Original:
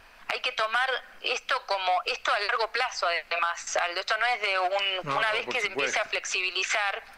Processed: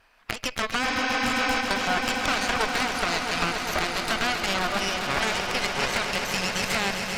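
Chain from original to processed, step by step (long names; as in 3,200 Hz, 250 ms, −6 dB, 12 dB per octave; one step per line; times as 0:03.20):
harmonic generator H 3 −14 dB, 4 −10 dB, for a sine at −14 dBFS
healed spectral selection 0:00.87–0:01.58, 230–6,600 Hz before
echo that builds up and dies away 133 ms, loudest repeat 5, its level −10 dB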